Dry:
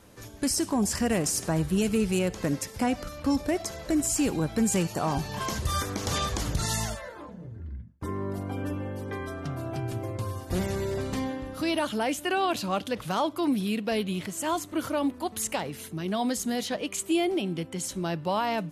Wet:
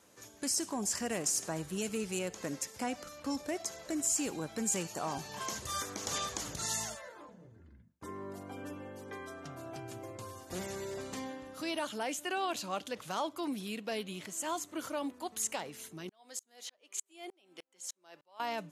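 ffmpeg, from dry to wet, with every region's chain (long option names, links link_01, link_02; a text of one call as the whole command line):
ffmpeg -i in.wav -filter_complex "[0:a]asettb=1/sr,asplit=3[link_01][link_02][link_03];[link_01]atrim=end=16.094[link_04];[link_02]atrim=start=16.09:end=18.4,asetpts=PTS-STARTPTS,afade=type=in:duration=0.004:curve=qsin,afade=type=out:start_time=2.306:duration=0.004:curve=qsin,highpass=460,aeval=exprs='val(0)*pow(10,-39*if(lt(mod(-3.3*n/s,1),2*abs(-3.3)/1000),1-mod(-3.3*n/s,1)/(2*abs(-3.3)/1000),(mod(-3.3*n/s,1)-2*abs(-3.3)/1000)/(1-2*abs(-3.3)/1000))/20)':channel_layout=same[link_05];[link_03]atrim=start=18.396[link_06];[link_04][link_05]acrossfade=duration=0.004:curve1=hsin:curve2=qsin[link_07];[link_07][link_06]acrossfade=duration=0.004:curve1=qsin:curve2=hsin,highpass=frequency=360:poles=1,equalizer=frequency=6800:width_type=o:width=0.51:gain=6.5,volume=-7dB" out.wav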